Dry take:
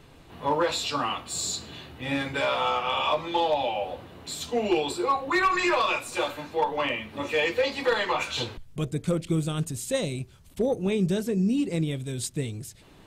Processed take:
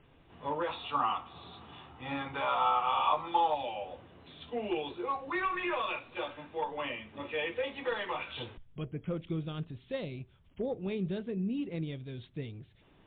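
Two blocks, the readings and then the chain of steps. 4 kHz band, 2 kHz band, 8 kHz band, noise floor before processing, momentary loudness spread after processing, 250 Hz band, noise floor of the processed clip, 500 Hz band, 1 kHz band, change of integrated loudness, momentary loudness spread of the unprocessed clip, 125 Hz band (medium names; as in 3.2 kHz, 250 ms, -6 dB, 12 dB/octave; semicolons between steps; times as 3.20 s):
-11.0 dB, -9.5 dB, under -40 dB, -52 dBFS, 16 LU, -9.5 dB, -62 dBFS, -9.5 dB, -4.0 dB, -7.5 dB, 10 LU, -9.5 dB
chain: time-frequency box 0.68–3.55 s, 690–1400 Hz +9 dB; trim -9 dB; MP3 48 kbps 8 kHz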